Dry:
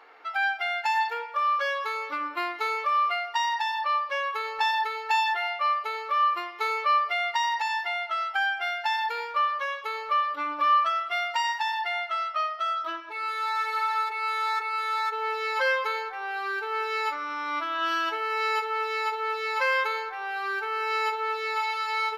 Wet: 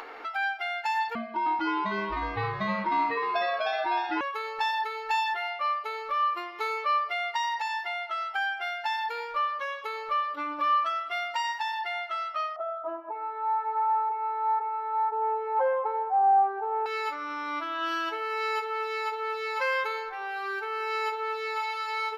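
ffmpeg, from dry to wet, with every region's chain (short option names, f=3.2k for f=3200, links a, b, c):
-filter_complex "[0:a]asettb=1/sr,asplit=3[a][b][c];[a]atrim=end=1.154[d];[b]atrim=start=1.15:end=4.21,asetpts=PTS-STARTPTS,afade=t=in:d=0.004:c=qsin,afade=t=out:st=3.056:d=0.004:c=qsin,lowpass=f=5.2k:w=0.5412,lowpass=f=5.2k:w=1.3066,afreqshift=-240,asplit=7[e][f][g][h][i][j][k];[f]adelay=308,afreqshift=82,volume=-4.5dB[l];[g]adelay=616,afreqshift=164,volume=-11.4dB[m];[h]adelay=924,afreqshift=246,volume=-18.4dB[n];[i]adelay=1232,afreqshift=328,volume=-25.3dB[o];[j]adelay=1540,afreqshift=410,volume=-32.2dB[p];[k]adelay=1848,afreqshift=492,volume=-39.2dB[q];[e][l][m][n][o][p][q]amix=inputs=7:normalize=0,atrim=end_sample=134946[r];[c]atrim=start=4.206[s];[d][r]acrossfade=d=0.004:c1=hsin:c2=qsin[t];[t][s]acrossfade=d=0.004:c1=qsin:c2=hsin,asettb=1/sr,asplit=3[u][v][w];[u]atrim=end=12.564[x];[v]atrim=start=12.56:end=16.86,asetpts=PTS-STARTPTS,afade=t=in:d=0.004:c=qsin,afade=t=out:st=4.296:d=0.004:c=qsin,lowpass=f=770:t=q:w=9.5,lowshelf=f=240:g=-7[y];[w]atrim=start=16.856[z];[x][y]acrossfade=d=0.004:c1=hsin:c2=qsin[aa];[aa][z]acrossfade=d=0.004:c1=qsin:c2=hsin,lowshelf=f=330:g=10,acompressor=mode=upward:threshold=-27dB:ratio=2.5,volume=-4dB"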